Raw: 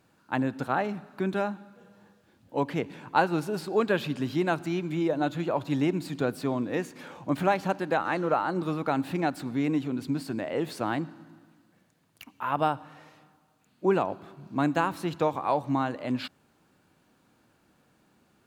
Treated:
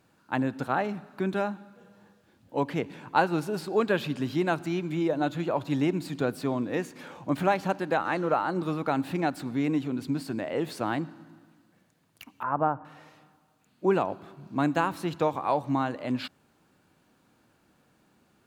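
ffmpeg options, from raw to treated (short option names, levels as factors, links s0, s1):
-filter_complex "[0:a]asettb=1/sr,asplit=3[s0][s1][s2];[s0]atrim=end=12.434[s3];[s1]atrim=start=12.43:end=12.85,asetpts=PTS-STARTPTS,afade=t=in:d=0.004:c=qsin,afade=t=out:st=0.416:d=0.004:c=qsin,lowpass=f=1600:w=0.5412,lowpass=f=1600:w=1.3066[s4];[s2]atrim=start=12.846[s5];[s3][s4]acrossfade=d=0.004:c1=hsin:c2=qsin[s6];[s6][s5]acrossfade=d=0.004:c1=qsin:c2=hsin"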